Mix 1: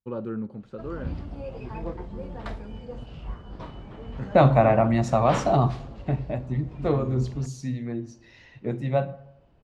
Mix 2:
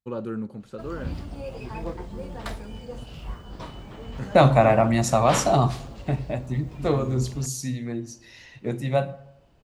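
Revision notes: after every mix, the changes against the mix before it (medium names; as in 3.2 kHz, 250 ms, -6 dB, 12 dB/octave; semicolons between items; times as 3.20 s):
master: remove tape spacing loss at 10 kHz 20 dB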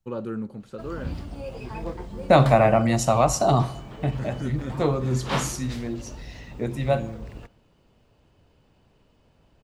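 second voice: entry -2.05 s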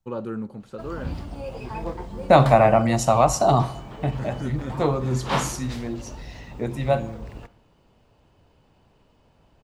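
background: send +7.0 dB; master: add peaking EQ 880 Hz +4 dB 0.87 oct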